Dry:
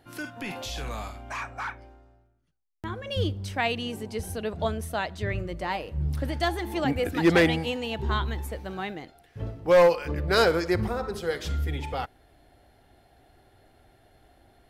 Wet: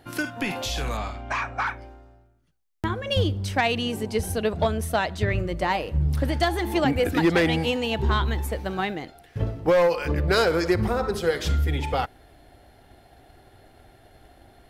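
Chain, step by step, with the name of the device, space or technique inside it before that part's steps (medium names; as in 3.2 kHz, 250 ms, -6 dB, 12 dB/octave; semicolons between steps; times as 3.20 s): 0.97–1.67 s: low-pass 5.1 kHz 12 dB/octave; drum-bus smash (transient shaper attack +5 dB, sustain +1 dB; compression 6:1, threshold -21 dBFS, peak gain reduction 9 dB; saturation -16.5 dBFS, distortion -22 dB); trim +5.5 dB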